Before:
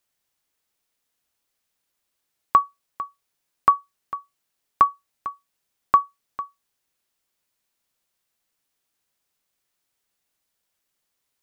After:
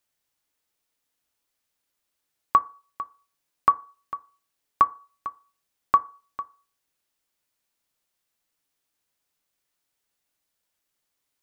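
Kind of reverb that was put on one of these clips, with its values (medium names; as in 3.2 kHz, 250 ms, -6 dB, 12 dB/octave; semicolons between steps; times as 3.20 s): FDN reverb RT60 0.37 s, low-frequency decay 0.75×, high-frequency decay 0.4×, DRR 13 dB; trim -2 dB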